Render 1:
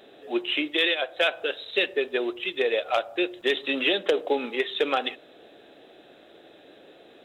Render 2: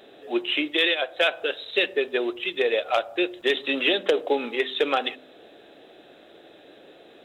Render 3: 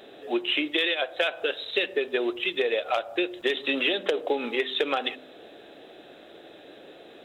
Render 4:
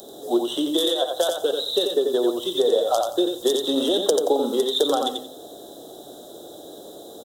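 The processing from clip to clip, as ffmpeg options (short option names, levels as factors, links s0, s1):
-af "bandreject=f=64.58:t=h:w=4,bandreject=f=129.16:t=h:w=4,bandreject=f=193.74:t=h:w=4,bandreject=f=258.32:t=h:w=4,volume=1.19"
-af "acompressor=threshold=0.0631:ratio=5,volume=1.26"
-filter_complex "[0:a]acrossover=split=250|1300[s0][s1][s2];[s2]aexciter=amount=5.7:drive=5:freq=2600[s3];[s0][s1][s3]amix=inputs=3:normalize=0,asuperstop=centerf=2400:order=4:qfactor=0.52,aecho=1:1:88|176|264:0.596|0.131|0.0288,volume=2"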